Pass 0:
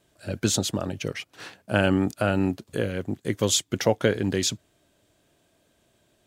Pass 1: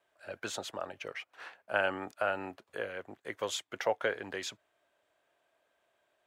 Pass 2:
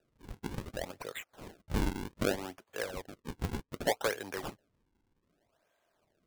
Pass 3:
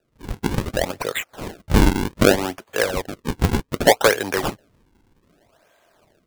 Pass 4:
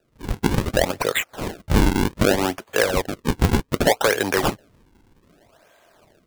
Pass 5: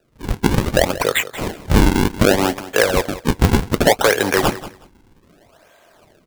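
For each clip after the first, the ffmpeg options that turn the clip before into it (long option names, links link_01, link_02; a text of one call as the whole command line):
ffmpeg -i in.wav -filter_complex "[0:a]acrossover=split=540 2500:gain=0.0631 1 0.178[link_01][link_02][link_03];[link_01][link_02][link_03]amix=inputs=3:normalize=0,volume=-2.5dB" out.wav
ffmpeg -i in.wav -af "acrusher=samples=41:mix=1:aa=0.000001:lfo=1:lforange=65.6:lforate=0.65" out.wav
ffmpeg -i in.wav -af "dynaudnorm=framelen=110:gausssize=3:maxgain=12dB,volume=4.5dB" out.wav
ffmpeg -i in.wav -af "alimiter=limit=-11dB:level=0:latency=1:release=134,volume=3.5dB" out.wav
ffmpeg -i in.wav -af "aecho=1:1:184|368:0.168|0.0302,volume=4dB" out.wav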